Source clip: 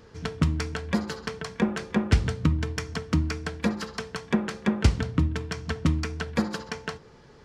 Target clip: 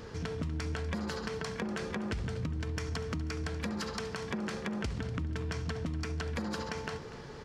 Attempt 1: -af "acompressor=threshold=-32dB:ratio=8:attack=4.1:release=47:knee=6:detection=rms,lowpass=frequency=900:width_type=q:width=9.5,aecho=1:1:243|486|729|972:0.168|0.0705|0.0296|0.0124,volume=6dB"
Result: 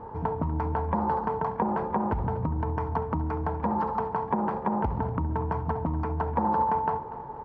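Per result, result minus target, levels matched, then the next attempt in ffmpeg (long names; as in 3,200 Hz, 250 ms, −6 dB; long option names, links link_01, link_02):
1,000 Hz band +10.0 dB; downward compressor: peak gain reduction −6 dB
-af "acompressor=threshold=-32dB:ratio=8:attack=4.1:release=47:knee=6:detection=rms,aecho=1:1:243|486|729|972:0.168|0.0705|0.0296|0.0124,volume=6dB"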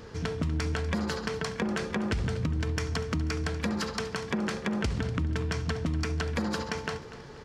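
downward compressor: peak gain reduction −6 dB
-af "acompressor=threshold=-39dB:ratio=8:attack=4.1:release=47:knee=6:detection=rms,aecho=1:1:243|486|729|972:0.168|0.0705|0.0296|0.0124,volume=6dB"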